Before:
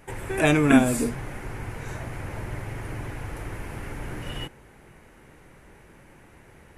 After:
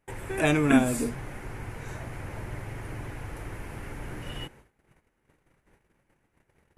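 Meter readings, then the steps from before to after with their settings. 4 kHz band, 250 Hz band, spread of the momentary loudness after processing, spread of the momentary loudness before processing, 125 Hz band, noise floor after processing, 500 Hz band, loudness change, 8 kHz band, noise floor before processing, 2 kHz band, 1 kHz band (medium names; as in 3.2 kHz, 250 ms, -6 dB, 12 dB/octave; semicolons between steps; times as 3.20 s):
-3.5 dB, -3.5 dB, 18 LU, 18 LU, -3.5 dB, -74 dBFS, -3.5 dB, -3.5 dB, -3.5 dB, -53 dBFS, -3.5 dB, -3.5 dB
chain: gate -48 dBFS, range -19 dB; trim -3.5 dB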